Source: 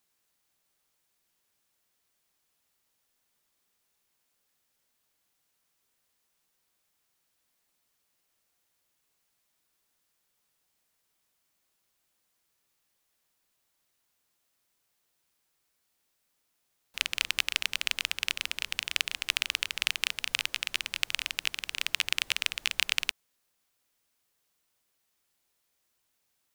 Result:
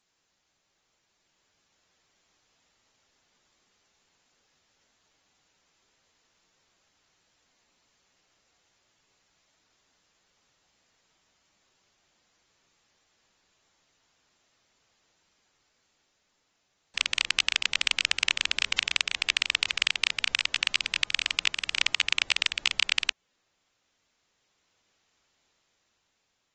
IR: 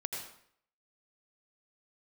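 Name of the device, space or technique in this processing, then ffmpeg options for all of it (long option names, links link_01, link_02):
low-bitrate web radio: -filter_complex "[0:a]asettb=1/sr,asplit=3[link_01][link_02][link_03];[link_01]atrim=end=20.634[link_04];[link_02]atrim=start=20.63:end=22.21,asetpts=PTS-STARTPTS,afade=type=in:duration=0.004:curve=qsin,afade=type=out:start_time=1.576:duration=0.004:curve=qsin,bandreject=frequency=205:width_type=h:width=4,bandreject=frequency=410:width_type=h:width=4,bandreject=frequency=615:width_type=h:width=4,bandreject=frequency=820:width_type=h:width=4,bandreject=frequency=1025:width_type=h:width=4,bandreject=frequency=1230:width_type=h:width=4[link_05];[link_03]atrim=start=22.206[link_06];[link_04][link_05]acrossfade=duration=0.004:curve1=hsin:curve2=qsin[link_07];[link_07][link_06]acrossfade=duration=0.004:curve1=qsin:curve2=hsin,dynaudnorm=framelen=580:gausssize=5:maxgain=5dB,alimiter=limit=-6dB:level=0:latency=1:release=320,volume=4dB" -ar 48000 -c:a aac -b:a 24k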